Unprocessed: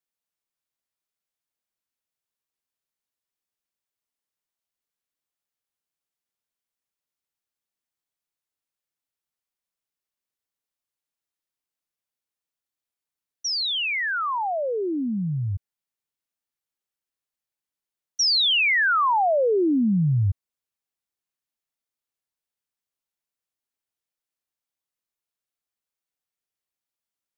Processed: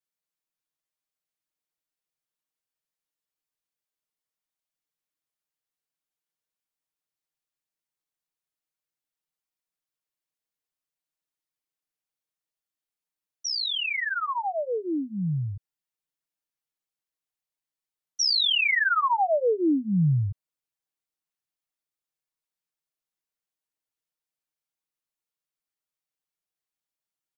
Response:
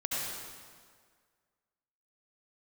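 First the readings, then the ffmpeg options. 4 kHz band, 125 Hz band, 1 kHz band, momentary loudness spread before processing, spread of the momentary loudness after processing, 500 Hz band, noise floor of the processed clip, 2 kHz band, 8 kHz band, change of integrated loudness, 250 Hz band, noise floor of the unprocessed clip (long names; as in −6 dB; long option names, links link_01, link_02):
−3.0 dB, −2.0 dB, −3.0 dB, 12 LU, 11 LU, −3.0 dB, below −85 dBFS, −3.0 dB, can't be measured, −3.0 dB, −3.0 dB, below −85 dBFS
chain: -af "aecho=1:1:6.4:0.9,volume=-5.5dB"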